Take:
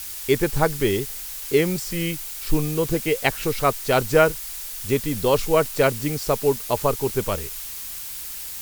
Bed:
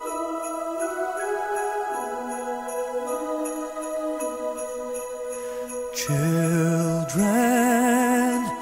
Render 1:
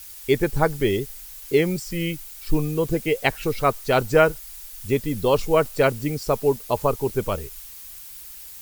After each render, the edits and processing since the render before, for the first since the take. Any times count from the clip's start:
broadband denoise 9 dB, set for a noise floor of −34 dBFS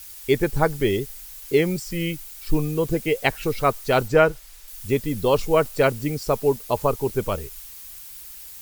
0:04.08–0:04.68: high-shelf EQ 7,900 Hz −10 dB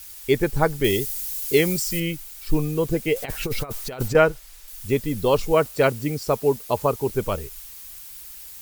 0:00.84–0:02.00: high-shelf EQ 3,500 Hz +11 dB
0:03.16–0:04.15: compressor whose output falls as the input rises −25 dBFS, ratio −0.5
0:05.52–0:07.09: high-pass filter 45 Hz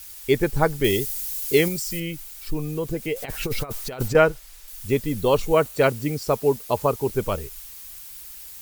0:01.68–0:03.34: downward compressor 1.5 to 1, threshold −30 dBFS
0:05.21–0:05.82: notch filter 5,100 Hz, Q 10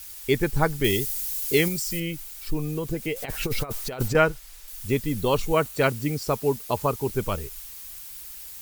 dynamic equaliser 530 Hz, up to −5 dB, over −30 dBFS, Q 1.1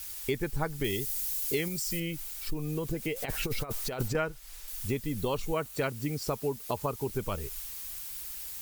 downward compressor 3 to 1, threshold −30 dBFS, peak gain reduction 12.5 dB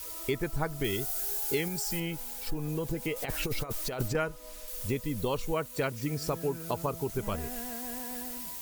mix in bed −22.5 dB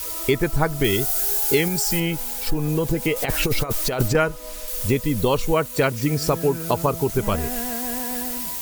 level +11 dB

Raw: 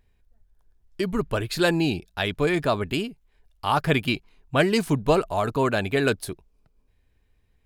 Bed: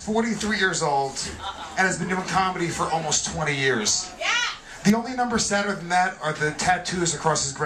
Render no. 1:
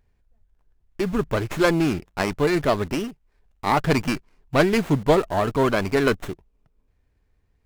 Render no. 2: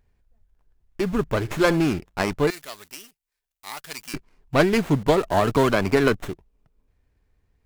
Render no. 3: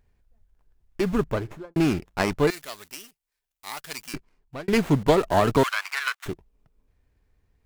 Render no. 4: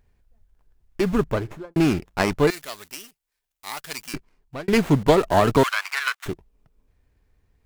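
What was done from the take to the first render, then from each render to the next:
in parallel at −9.5 dB: bit reduction 6 bits; on the sum: windowed peak hold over 9 samples
0:01.38–0:01.81: flutter between parallel walls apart 11.5 metres, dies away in 0.23 s; 0:02.50–0:04.14: first-order pre-emphasis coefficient 0.97; 0:05.08–0:06.16: multiband upward and downward compressor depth 100%
0:01.14–0:01.76: fade out and dull; 0:03.97–0:04.68: fade out; 0:05.63–0:06.26: inverse Chebyshev high-pass filter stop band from 260 Hz, stop band 70 dB
level +2.5 dB

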